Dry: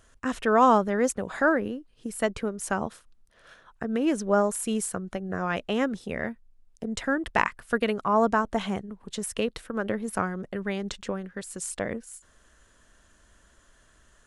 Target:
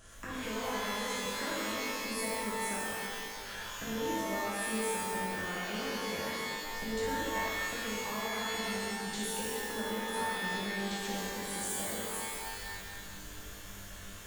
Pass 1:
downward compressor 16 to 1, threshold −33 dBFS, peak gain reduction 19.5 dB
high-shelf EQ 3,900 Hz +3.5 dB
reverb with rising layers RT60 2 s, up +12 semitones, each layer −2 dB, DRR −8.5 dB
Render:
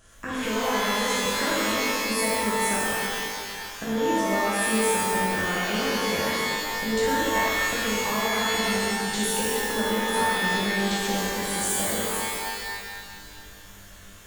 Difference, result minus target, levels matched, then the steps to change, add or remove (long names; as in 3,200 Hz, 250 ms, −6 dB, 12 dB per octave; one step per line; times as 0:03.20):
downward compressor: peak gain reduction −11 dB
change: downward compressor 16 to 1, threshold −44.5 dBFS, peak gain reduction 30 dB